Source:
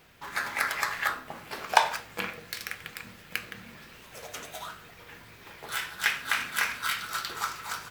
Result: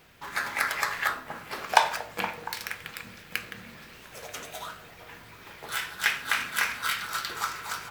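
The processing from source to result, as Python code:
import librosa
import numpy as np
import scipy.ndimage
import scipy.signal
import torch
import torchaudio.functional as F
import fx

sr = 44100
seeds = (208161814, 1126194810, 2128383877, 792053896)

y = fx.echo_stepped(x, sr, ms=234, hz=450.0, octaves=0.7, feedback_pct=70, wet_db=-10)
y = y * 10.0 ** (1.0 / 20.0)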